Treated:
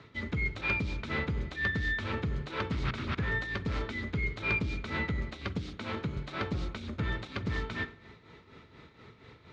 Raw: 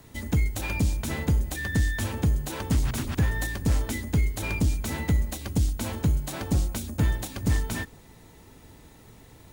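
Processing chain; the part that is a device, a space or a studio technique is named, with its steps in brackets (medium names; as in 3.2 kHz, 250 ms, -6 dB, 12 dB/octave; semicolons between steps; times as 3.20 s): 5.58–6.17 s: high-pass 100 Hz; combo amplifier with spring reverb and tremolo (spring tank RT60 1 s, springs 43 ms, chirp 30 ms, DRR 16 dB; tremolo 4.2 Hz, depth 64%; cabinet simulation 80–4400 Hz, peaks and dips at 280 Hz -3 dB, 410 Hz +4 dB, 770 Hz -5 dB, 1.3 kHz +9 dB, 2.2 kHz +7 dB, 3.8 kHz +4 dB)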